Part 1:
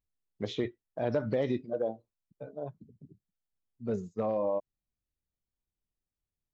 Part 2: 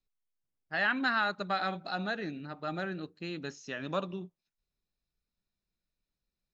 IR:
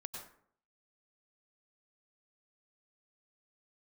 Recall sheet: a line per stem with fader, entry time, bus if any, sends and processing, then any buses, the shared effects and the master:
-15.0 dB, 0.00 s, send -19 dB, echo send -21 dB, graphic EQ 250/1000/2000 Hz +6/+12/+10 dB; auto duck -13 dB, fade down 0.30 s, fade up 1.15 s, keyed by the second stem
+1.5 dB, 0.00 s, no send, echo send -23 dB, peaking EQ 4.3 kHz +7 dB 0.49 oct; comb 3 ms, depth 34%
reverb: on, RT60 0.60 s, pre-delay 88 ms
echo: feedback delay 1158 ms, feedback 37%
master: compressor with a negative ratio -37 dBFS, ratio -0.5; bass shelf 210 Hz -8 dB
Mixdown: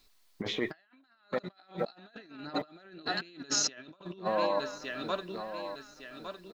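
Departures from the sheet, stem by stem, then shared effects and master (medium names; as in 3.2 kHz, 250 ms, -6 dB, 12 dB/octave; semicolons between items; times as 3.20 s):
stem 1 -15.0 dB -> -4.5 dB; stem 2 +1.5 dB -> +11.5 dB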